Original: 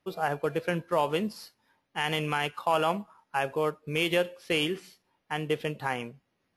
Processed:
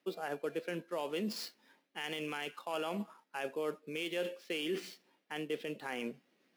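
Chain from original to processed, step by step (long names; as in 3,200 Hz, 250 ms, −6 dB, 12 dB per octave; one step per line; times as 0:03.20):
running median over 5 samples
reversed playback
downward compressor 5 to 1, threshold −37 dBFS, peak gain reduction 15 dB
reversed playback
parametric band 970 Hz −8 dB 1.4 octaves
brickwall limiter −33 dBFS, peak gain reduction 7 dB
high-pass filter 220 Hz 24 dB per octave
level +7 dB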